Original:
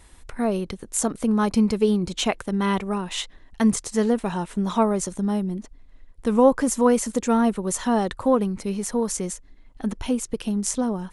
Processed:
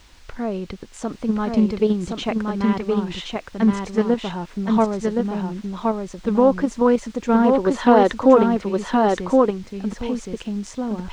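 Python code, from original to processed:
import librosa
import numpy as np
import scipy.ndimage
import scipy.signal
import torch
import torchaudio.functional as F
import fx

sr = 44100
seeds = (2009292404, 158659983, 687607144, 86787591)

p1 = fx.spec_box(x, sr, start_s=7.49, length_s=1.02, low_hz=250.0, high_hz=5000.0, gain_db=8)
p2 = fx.level_steps(p1, sr, step_db=19)
p3 = p1 + F.gain(torch.from_numpy(p2), 2.0).numpy()
p4 = fx.dmg_noise_colour(p3, sr, seeds[0], colour='blue', level_db=-37.0)
p5 = fx.air_absorb(p4, sr, metres=150.0)
p6 = p5 + fx.echo_single(p5, sr, ms=1070, db=-3.0, dry=0)
p7 = fx.doppler_dist(p6, sr, depth_ms=0.1)
y = F.gain(torch.from_numpy(p7), -3.5).numpy()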